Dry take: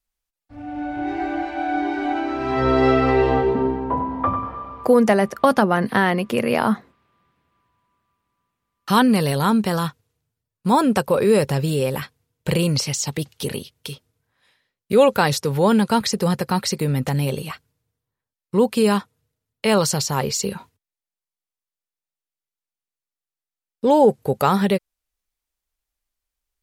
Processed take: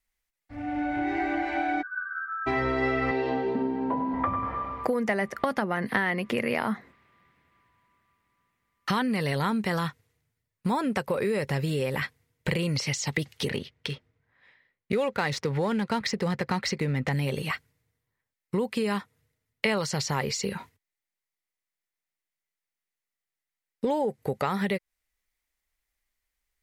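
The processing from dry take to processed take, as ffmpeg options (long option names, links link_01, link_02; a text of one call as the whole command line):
ffmpeg -i in.wav -filter_complex "[0:a]asplit=3[link_01][link_02][link_03];[link_01]afade=type=out:start_time=1.81:duration=0.02[link_04];[link_02]asuperpass=centerf=1400:order=12:qfactor=3.1,afade=type=in:start_time=1.81:duration=0.02,afade=type=out:start_time=2.46:duration=0.02[link_05];[link_03]afade=type=in:start_time=2.46:duration=0.02[link_06];[link_04][link_05][link_06]amix=inputs=3:normalize=0,asettb=1/sr,asplit=3[link_07][link_08][link_09];[link_07]atrim=end=3.114[link_10];[link_08]atrim=start=3.11:end=4.14,asetpts=PTS-STARTPTS,afade=type=in:duration=0.004:curve=qsin,afade=type=out:start_time=1.026:duration=0.004:curve=qsin,highpass=170,equalizer=frequency=250:width_type=q:width=4:gain=5,equalizer=frequency=370:width_type=q:width=4:gain=-3,equalizer=frequency=1200:width_type=q:width=4:gain=-8,equalizer=frequency=2000:width_type=q:width=4:gain=-8,equalizer=frequency=4500:width_type=q:width=4:gain=4,lowpass=frequency=6800:width=0.5412,lowpass=frequency=6800:width=1.3066[link_11];[link_09]atrim=start=4.136[link_12];[link_10][link_11]acrossfade=duration=0.004:curve1=hsin:curve2=qsin[link_13];[link_13][link_12]acrossfade=duration=0.004:curve1=qsin:curve2=hsin,asettb=1/sr,asplit=3[link_14][link_15][link_16];[link_14]atrim=end=13.504[link_17];[link_15]atrim=start=13.5:end=17.13,asetpts=PTS-STARTPTS,afade=type=in:duration=0.004:curve=qsin,afade=type=out:start_time=3.626:duration=0.004:curve=qsin,adynamicsmooth=sensitivity=5.5:basefreq=3300[link_18];[link_16]atrim=start=17.126[link_19];[link_17][link_18]acrossfade=duration=0.004:curve1=hsin:curve2=qsin[link_20];[link_20][link_19]acrossfade=duration=0.004:curve1=qsin:curve2=hsin,acompressor=threshold=-25dB:ratio=6,equalizer=frequency=2000:width_type=o:width=0.44:gain=10.5,acrossover=split=6900[link_21][link_22];[link_22]acompressor=threshold=-49dB:ratio=4:attack=1:release=60[link_23];[link_21][link_23]amix=inputs=2:normalize=0" out.wav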